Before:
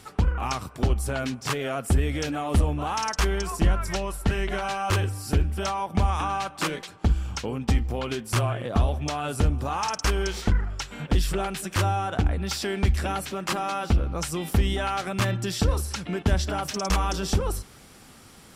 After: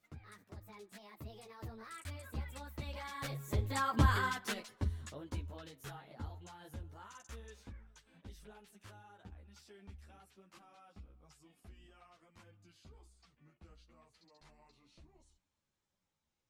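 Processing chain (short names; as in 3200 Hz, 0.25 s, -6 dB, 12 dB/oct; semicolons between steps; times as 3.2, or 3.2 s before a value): speed glide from 157% -> 68%; Doppler pass-by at 4.05, 9 m/s, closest 2.3 m; ensemble effect; gain -2 dB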